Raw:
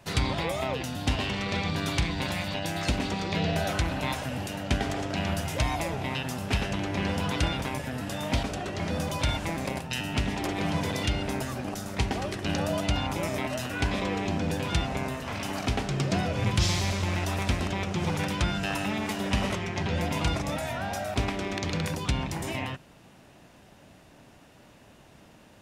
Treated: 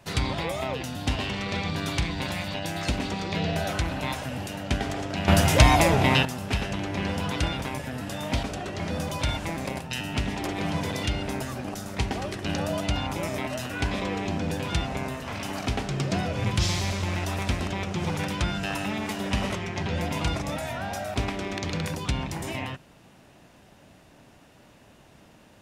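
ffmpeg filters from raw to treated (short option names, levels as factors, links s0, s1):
-filter_complex "[0:a]asplit=3[s0][s1][s2];[s0]atrim=end=5.282[s3];[s1]atrim=start=5.278:end=6.252,asetpts=PTS-STARTPTS,volume=3.55[s4];[s2]atrim=start=6.248[s5];[s3][s4]acrossfade=d=0.004:c1=hsin:c2=hsin[s6];[s6][s5]acrossfade=d=0.004:c1=hsin:c2=hsin"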